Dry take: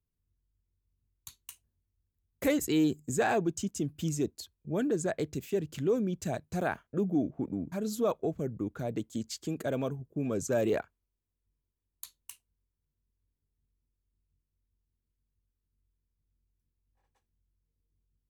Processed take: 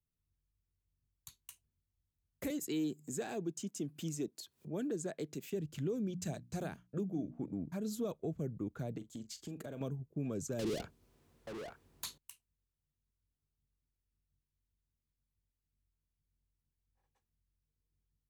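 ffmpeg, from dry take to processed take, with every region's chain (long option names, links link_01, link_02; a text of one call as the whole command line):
ffmpeg -i in.wav -filter_complex "[0:a]asettb=1/sr,asplit=3[link_01][link_02][link_03];[link_01]atrim=end=2.504[link_04];[link_02]atrim=start=2.5:end=5.5,asetpts=PTS-STARTPTS,afade=type=in:duration=0.004:curve=qsin,afade=type=out:start_time=2.996:duration=0.004:curve=qsin,highpass=220,acompressor=mode=upward:threshold=-36dB:ratio=2.5:attack=3.2:release=140:knee=2.83:detection=peak[link_05];[link_03]atrim=start=5.496[link_06];[link_04][link_05]acrossfade=duration=0.004:curve1=hsin:curve2=qsin[link_07];[link_07][link_06]acrossfade=duration=0.004:curve1=qsin:curve2=hsin,asettb=1/sr,asplit=3[link_08][link_09][link_10];[link_08]atrim=end=6.064[link_11];[link_09]atrim=start=6.06:end=7.52,asetpts=PTS-STARTPTS,afade=type=in:duration=0.004:curve=qsin,afade=type=out:start_time=1.456:duration=0.004:curve=qsin,equalizer=frequency=6000:width=0.63:gain=4.5,bandreject=frequency=60:width_type=h:width=6,bandreject=frequency=120:width_type=h:width=6,bandreject=frequency=180:width_type=h:width=6,bandreject=frequency=240:width_type=h:width=6,bandreject=frequency=300:width_type=h:width=6[link_12];[link_10]atrim=start=7.516[link_13];[link_11][link_12]acrossfade=duration=0.004:curve1=hsin:curve2=qsin[link_14];[link_14][link_13]acrossfade=duration=0.004:curve1=qsin:curve2=hsin,asettb=1/sr,asplit=3[link_15][link_16][link_17];[link_15]atrim=end=8.974[link_18];[link_16]atrim=start=8.97:end=9.81,asetpts=PTS-STARTPTS,afade=type=in:duration=0.004:curve=qsin,afade=type=out:start_time=0.836:duration=0.004:curve=qsin,acompressor=threshold=-36dB:ratio=5:attack=3.2:release=140:knee=1:detection=peak,asplit=2[link_19][link_20];[link_20]adelay=41,volume=-13dB[link_21];[link_19][link_21]amix=inputs=2:normalize=0,atrim=end_sample=37044[link_22];[link_17]atrim=start=9.806[link_23];[link_18][link_22]acrossfade=duration=0.004:curve1=hsin:curve2=qsin[link_24];[link_24][link_23]acrossfade=duration=0.004:curve1=qsin:curve2=hsin,asettb=1/sr,asplit=3[link_25][link_26][link_27];[link_25]atrim=end=10.594[link_28];[link_26]atrim=start=10.59:end=12.18,asetpts=PTS-STARTPTS,afade=type=in:duration=0.004:curve=qsin,afade=type=out:start_time=1.586:duration=0.004:curve=qsin,tiltshelf=frequency=1100:gain=8,asplit=2[link_29][link_30];[link_30]highpass=frequency=720:poles=1,volume=39dB,asoftclip=type=tanh:threshold=-13dB[link_31];[link_29][link_31]amix=inputs=2:normalize=0,lowpass=frequency=6600:poles=1,volume=-6dB,aecho=1:1:881:0.1,atrim=end_sample=70119[link_32];[link_27]atrim=start=12.176[link_33];[link_28][link_32]acrossfade=duration=0.004:curve1=hsin:curve2=qsin[link_34];[link_34][link_33]acrossfade=duration=0.004:curve1=qsin:curve2=hsin,equalizer=frequency=150:width_type=o:width=0.77:gain=4.5,acrossover=split=430|3000[link_35][link_36][link_37];[link_36]acompressor=threshold=-39dB:ratio=6[link_38];[link_35][link_38][link_37]amix=inputs=3:normalize=0,alimiter=limit=-22.5dB:level=0:latency=1:release=315,volume=-6dB" out.wav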